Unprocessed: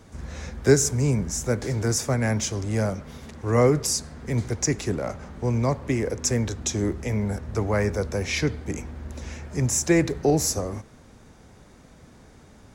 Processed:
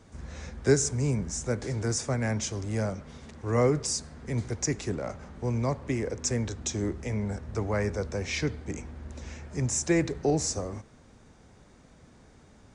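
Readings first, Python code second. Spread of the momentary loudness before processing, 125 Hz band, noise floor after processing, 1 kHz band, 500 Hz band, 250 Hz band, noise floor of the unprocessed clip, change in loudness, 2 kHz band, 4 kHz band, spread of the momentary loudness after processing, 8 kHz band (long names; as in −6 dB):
14 LU, −5.0 dB, −56 dBFS, −5.0 dB, −5.0 dB, −5.0 dB, −51 dBFS, −5.0 dB, −5.0 dB, −5.0 dB, 14 LU, −5.0 dB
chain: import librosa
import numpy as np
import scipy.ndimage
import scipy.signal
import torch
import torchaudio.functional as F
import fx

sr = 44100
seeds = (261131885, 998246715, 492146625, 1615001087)

y = fx.brickwall_lowpass(x, sr, high_hz=9900.0)
y = y * 10.0 ** (-5.0 / 20.0)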